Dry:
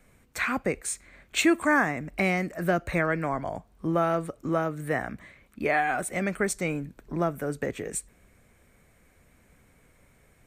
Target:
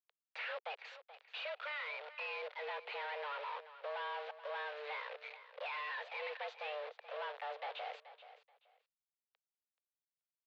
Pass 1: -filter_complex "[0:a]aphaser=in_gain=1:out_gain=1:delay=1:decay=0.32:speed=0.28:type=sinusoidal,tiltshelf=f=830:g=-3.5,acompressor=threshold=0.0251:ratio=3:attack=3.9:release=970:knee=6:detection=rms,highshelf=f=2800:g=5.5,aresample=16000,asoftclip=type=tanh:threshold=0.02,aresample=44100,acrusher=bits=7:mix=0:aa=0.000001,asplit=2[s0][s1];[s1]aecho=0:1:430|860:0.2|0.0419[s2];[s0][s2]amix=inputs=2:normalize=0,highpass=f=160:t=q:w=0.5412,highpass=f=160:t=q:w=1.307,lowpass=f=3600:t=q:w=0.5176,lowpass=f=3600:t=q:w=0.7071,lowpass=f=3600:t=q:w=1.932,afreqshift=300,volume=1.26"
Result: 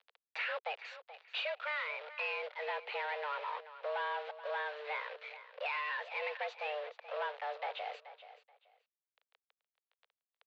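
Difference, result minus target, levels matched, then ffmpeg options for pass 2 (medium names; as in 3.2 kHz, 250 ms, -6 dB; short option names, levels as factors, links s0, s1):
saturation: distortion -6 dB
-filter_complex "[0:a]aphaser=in_gain=1:out_gain=1:delay=1:decay=0.32:speed=0.28:type=sinusoidal,tiltshelf=f=830:g=-3.5,acompressor=threshold=0.0251:ratio=3:attack=3.9:release=970:knee=6:detection=rms,highshelf=f=2800:g=5.5,aresample=16000,asoftclip=type=tanh:threshold=0.00631,aresample=44100,acrusher=bits=7:mix=0:aa=0.000001,asplit=2[s0][s1];[s1]aecho=0:1:430|860:0.2|0.0419[s2];[s0][s2]amix=inputs=2:normalize=0,highpass=f=160:t=q:w=0.5412,highpass=f=160:t=q:w=1.307,lowpass=f=3600:t=q:w=0.5176,lowpass=f=3600:t=q:w=0.7071,lowpass=f=3600:t=q:w=1.932,afreqshift=300,volume=1.26"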